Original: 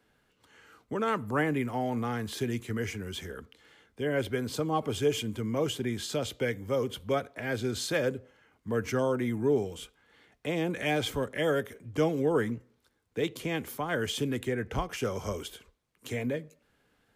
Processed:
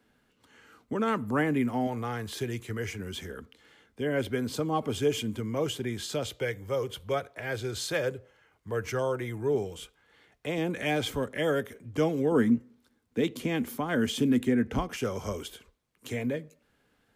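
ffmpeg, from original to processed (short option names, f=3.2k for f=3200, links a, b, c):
-af "asetnsamples=n=441:p=0,asendcmd='1.87 equalizer g -5.5;2.99 equalizer g 3.5;5.4 equalizer g -2.5;6.31 equalizer g -11.5;9.55 equalizer g -4.5;10.58 equalizer g 2.5;12.32 equalizer g 13;14.96 equalizer g 2',equalizer=f=240:t=o:w=0.5:g=6.5"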